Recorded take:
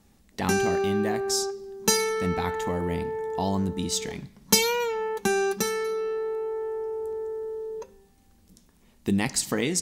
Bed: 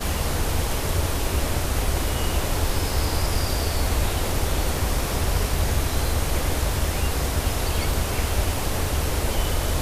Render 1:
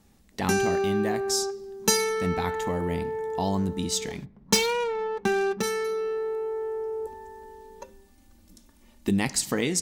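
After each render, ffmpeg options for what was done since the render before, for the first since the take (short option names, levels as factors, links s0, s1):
-filter_complex "[0:a]asplit=3[s0][s1][s2];[s0]afade=t=out:st=4.24:d=0.02[s3];[s1]adynamicsmooth=sensitivity=4:basefreq=1200,afade=t=in:st=4.24:d=0.02,afade=t=out:st=5.62:d=0.02[s4];[s2]afade=t=in:st=5.62:d=0.02[s5];[s3][s4][s5]amix=inputs=3:normalize=0,asettb=1/sr,asplit=3[s6][s7][s8];[s6]atrim=end=7.064[s9];[s7]atrim=start=7.06:end=9.09,asetpts=PTS-STARTPTS,afade=t=in:d=0.004:c=qsin,afade=t=out:st=2.026:d=0.004:c=qsin,aecho=1:1:3.4:0.86,atrim=end_sample=89523[s10];[s8]atrim=start=9.086[s11];[s9][s10]acrossfade=d=0.004:c1=hsin:c2=qsin[s12];[s12][s11]acrossfade=d=0.004:c1=qsin:c2=hsin"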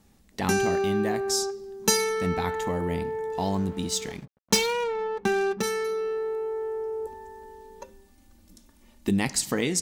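-filter_complex "[0:a]asettb=1/sr,asplit=3[s0][s1][s2];[s0]atrim=end=3.324[s3];[s1]atrim=start=3.32:end=4.83,asetpts=PTS-STARTPTS,afade=t=in:d=0.004:c=qsin,afade=t=out:st=1.506:d=0.004:c=qsin,aeval=exprs='sgn(val(0))*max(abs(val(0))-0.00473,0)':c=same[s4];[s2]atrim=start=4.826[s5];[s3][s4]acrossfade=d=0.004:c1=hsin:c2=qsin[s6];[s6][s5]acrossfade=d=0.004:c1=qsin:c2=hsin"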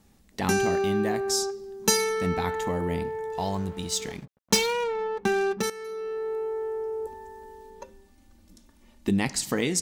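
-filter_complex "[0:a]asettb=1/sr,asplit=3[s0][s1][s2];[s0]atrim=end=3.084[s3];[s1]atrim=start=3.08:end=4,asetpts=PTS-STARTPTS,afade=t=in:d=0.004:c=qsin,afade=t=out:st=0.916:d=0.004:c=qsin,equalizer=f=260:w=1.8:g=-9[s4];[s2]atrim=start=3.996[s5];[s3][s4]acrossfade=d=0.004:c1=hsin:c2=qsin[s6];[s6][s5]acrossfade=d=0.004:c1=qsin:c2=hsin,asettb=1/sr,asplit=3[s7][s8][s9];[s7]atrim=end=7.704[s10];[s8]atrim=start=7.7:end=9.42,asetpts=PTS-STARTPTS,afade=t=in:d=0.004:c=qsin,afade=t=out:st=1.716:d=0.004:c=qsin,highshelf=f=8300:g=-6.5[s11];[s9]atrim=start=9.416[s12];[s10][s11]acrossfade=d=0.004:c1=hsin:c2=qsin[s13];[s13][s12]acrossfade=d=0.004:c1=qsin:c2=hsin,asplit=2[s14][s15];[s14]atrim=end=5.7,asetpts=PTS-STARTPTS,afade=t=out:st=5.696:d=0.004:c=hsin:silence=0.211349[s16];[s15]atrim=start=5.7,asetpts=PTS-STARTPTS,afade=t=in:d=0.67:silence=0.211349[s17];[s16][s17]concat=n=2:v=0:a=1"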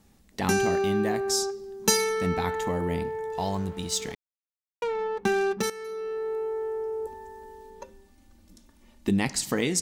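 -filter_complex "[0:a]asplit=3[s0][s1][s2];[s0]atrim=end=4.15,asetpts=PTS-STARTPTS,afade=t=out:st=4.146:d=0.004:c=hsin[s3];[s1]atrim=start=4.15:end=4.82,asetpts=PTS-STARTPTS,volume=0[s4];[s2]atrim=start=4.82,asetpts=PTS-STARTPTS,afade=t=in:d=0.004:c=hsin[s5];[s3][s4][s5]concat=n=3:v=0:a=1"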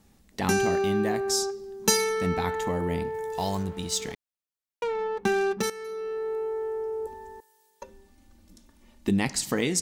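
-filter_complex "[0:a]asettb=1/sr,asplit=3[s0][s1][s2];[s0]atrim=end=3.144[s3];[s1]atrim=start=3.14:end=3.63,asetpts=PTS-STARTPTS,afade=t=in:d=0.004:c=qsin,afade=t=out:st=0.486:d=0.004:c=qsin,highshelf=f=5500:g=11[s4];[s2]atrim=start=3.626[s5];[s3][s4]acrossfade=d=0.004:c1=hsin:c2=qsin[s6];[s6][s5]acrossfade=d=0.004:c1=qsin:c2=hsin,asettb=1/sr,asplit=3[s7][s8][s9];[s7]atrim=end=7.404[s10];[s8]atrim=start=7.4:end=7.82,asetpts=PTS-STARTPTS,afade=t=in:d=0.004:c=qsin,afade=t=out:st=0.416:d=0.004:c=qsin,aderivative[s11];[s9]atrim=start=7.816[s12];[s10][s11]acrossfade=d=0.004:c1=hsin:c2=qsin[s13];[s13][s12]acrossfade=d=0.004:c1=qsin:c2=hsin"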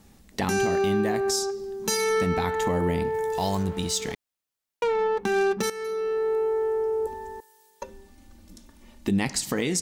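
-af "acontrast=40,alimiter=limit=0.168:level=0:latency=1:release=219"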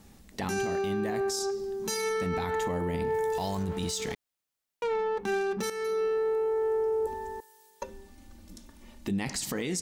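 -af "alimiter=limit=0.0708:level=0:latency=1:release=29"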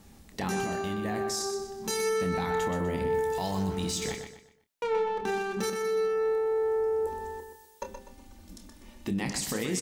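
-filter_complex "[0:a]asplit=2[s0][s1];[s1]adelay=27,volume=0.355[s2];[s0][s2]amix=inputs=2:normalize=0,aecho=1:1:124|248|372|496:0.422|0.148|0.0517|0.0181"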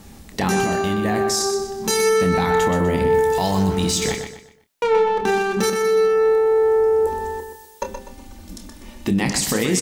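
-af "volume=3.55"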